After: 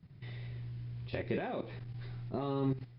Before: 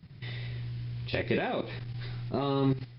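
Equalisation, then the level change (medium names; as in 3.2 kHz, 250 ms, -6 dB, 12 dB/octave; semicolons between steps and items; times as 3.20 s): treble shelf 2.3 kHz -9.5 dB; -5.5 dB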